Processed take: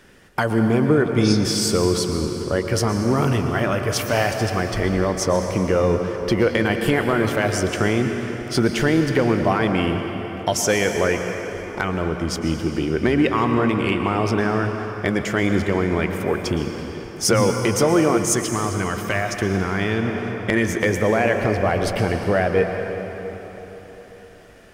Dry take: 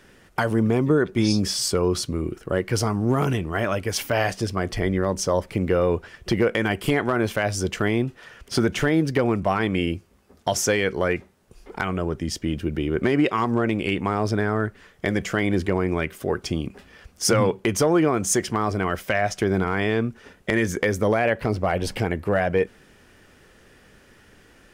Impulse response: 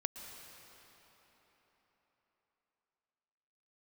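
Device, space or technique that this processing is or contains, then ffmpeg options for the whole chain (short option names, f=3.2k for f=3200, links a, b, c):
cathedral: -filter_complex "[1:a]atrim=start_sample=2205[a];[0:a][a]afir=irnorm=-1:irlink=0,asettb=1/sr,asplit=3[b][c][d];[b]atrim=end=18.194[e];[c]atrim=start=18.19:end=20.06,asetpts=PTS-STARTPTS,afade=t=in:d=0.004:c=qsin,afade=t=out:st=1.866:d=0.004:c=qsin,equalizer=f=630:t=o:w=2.1:g=-5[f];[d]atrim=start=20.056[g];[e][f]acrossfade=d=0.004:c1=hsin:c2=qsin[h];[h][g]acrossfade=d=0.004:c1=qsin:c2=hsin,volume=3dB"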